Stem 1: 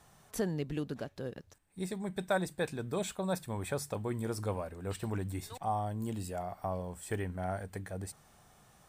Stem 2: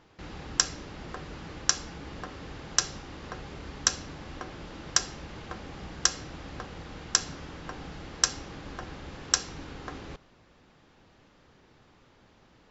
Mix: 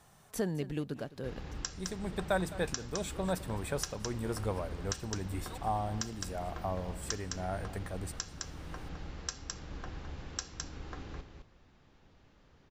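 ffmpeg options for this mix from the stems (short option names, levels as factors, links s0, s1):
-filter_complex "[0:a]volume=1,asplit=2[s0][s1];[s1]volume=0.141[s2];[1:a]lowshelf=f=97:g=11,adelay=1050,volume=0.447,asplit=2[s3][s4];[s4]volume=0.422[s5];[s2][s5]amix=inputs=2:normalize=0,aecho=0:1:211:1[s6];[s0][s3][s6]amix=inputs=3:normalize=0,alimiter=limit=0.119:level=0:latency=1:release=467"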